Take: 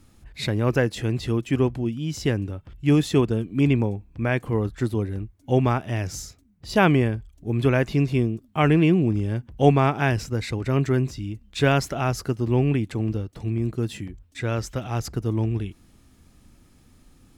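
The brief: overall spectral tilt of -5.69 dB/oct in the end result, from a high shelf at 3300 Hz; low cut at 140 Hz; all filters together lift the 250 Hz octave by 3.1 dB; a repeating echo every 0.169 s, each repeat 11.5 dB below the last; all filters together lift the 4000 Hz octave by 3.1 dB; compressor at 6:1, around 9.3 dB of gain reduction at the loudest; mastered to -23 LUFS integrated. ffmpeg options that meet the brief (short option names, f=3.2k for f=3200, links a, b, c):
-af "highpass=140,equalizer=f=250:t=o:g=4.5,highshelf=f=3.3k:g=-3.5,equalizer=f=4k:t=o:g=6.5,acompressor=threshold=-21dB:ratio=6,aecho=1:1:169|338|507:0.266|0.0718|0.0194,volume=5dB"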